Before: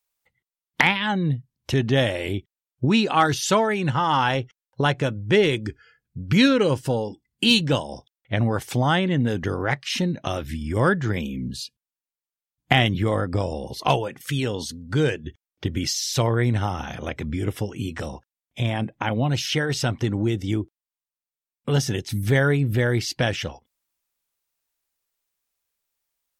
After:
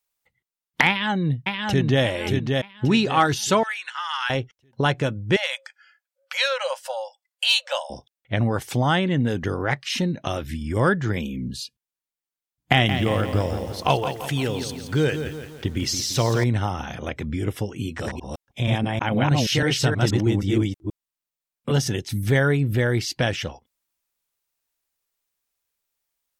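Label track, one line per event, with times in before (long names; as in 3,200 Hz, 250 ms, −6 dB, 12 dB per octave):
0.880000	2.030000	delay throw 580 ms, feedback 35%, level −3.5 dB
3.630000	4.300000	high-pass filter 1,300 Hz 24 dB per octave
5.360000	7.900000	linear-phase brick-wall high-pass 510 Hz
12.720000	16.440000	feedback echo at a low word length 170 ms, feedback 55%, word length 7 bits, level −8.5 dB
17.880000	21.880000	delay that plays each chunk backwards 159 ms, level 0 dB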